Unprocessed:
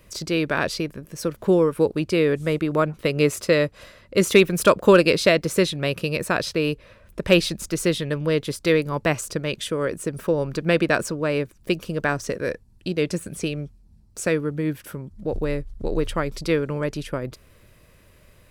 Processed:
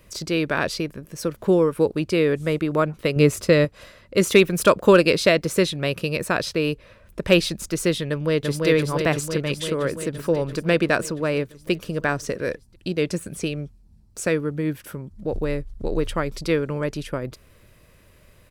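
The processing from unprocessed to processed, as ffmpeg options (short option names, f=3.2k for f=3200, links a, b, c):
-filter_complex "[0:a]asettb=1/sr,asplit=3[a][b][c];[a]atrim=end=3.164[d];[b]atrim=start=3.16:end=3.65,asetpts=PTS-STARTPTS,afade=t=in:d=0.004:c=qsin,afade=t=out:st=0.486:d=0.004:c=qsin,lowshelf=f=230:g=9[e];[c]atrim=start=3.646[f];[d][e]acrossfade=d=0.004:c1=hsin:c2=qsin[g];[g][f]acrossfade=d=0.004:c1=qsin:c2=hsin,asplit=2[h][i];[i]afade=t=in:st=8.09:d=0.01,afade=t=out:st=8.67:d=0.01,aecho=0:1:340|680|1020|1360|1700|2040|2380|2720|3060|3400|3740|4080:0.749894|0.562421|0.421815|0.316362|0.237271|0.177953|0.133465|0.100099|0.0750741|0.0563056|0.0422292|0.0316719[j];[h][j]amix=inputs=2:normalize=0"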